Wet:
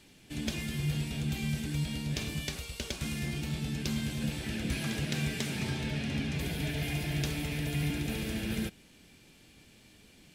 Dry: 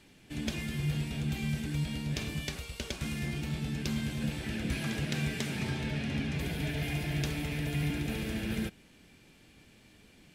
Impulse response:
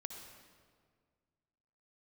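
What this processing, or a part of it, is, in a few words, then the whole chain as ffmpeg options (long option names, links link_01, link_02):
exciter from parts: -filter_complex "[0:a]asplit=2[link_01][link_02];[link_02]highpass=2500,asoftclip=type=tanh:threshold=-39.5dB,volume=-4dB[link_03];[link_01][link_03]amix=inputs=2:normalize=0"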